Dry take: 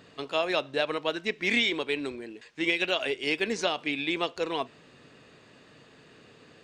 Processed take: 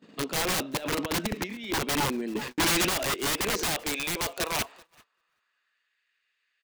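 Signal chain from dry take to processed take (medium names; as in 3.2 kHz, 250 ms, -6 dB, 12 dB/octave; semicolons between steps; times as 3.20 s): median filter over 3 samples; peaking EQ 200 Hz +8 dB 0.32 oct; 0.77–1.81 s: compressor with a negative ratio -33 dBFS, ratio -0.5; high-pass sweep 240 Hz -> 1.9 kHz, 2.80–5.99 s; integer overflow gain 24 dB; peaking EQ 66 Hz +4.5 dB 2.5 oct; on a send: feedback delay 386 ms, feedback 34%, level -23.5 dB; on the sum: gate -49 dBFS, range -23 dB; 2.35–2.89 s: waveshaping leveller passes 3; trim +1.5 dB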